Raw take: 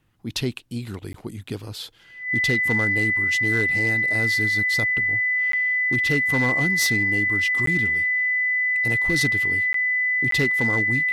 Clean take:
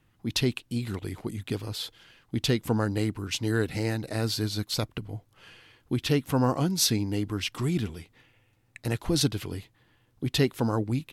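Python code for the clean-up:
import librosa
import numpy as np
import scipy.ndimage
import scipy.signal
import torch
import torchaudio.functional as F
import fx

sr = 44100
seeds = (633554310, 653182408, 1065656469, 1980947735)

y = fx.fix_declip(x, sr, threshold_db=-14.5)
y = fx.notch(y, sr, hz=2000.0, q=30.0)
y = fx.fix_interpolate(y, sr, at_s=(1.13, 5.52, 7.66, 9.73, 10.31), length_ms=13.0)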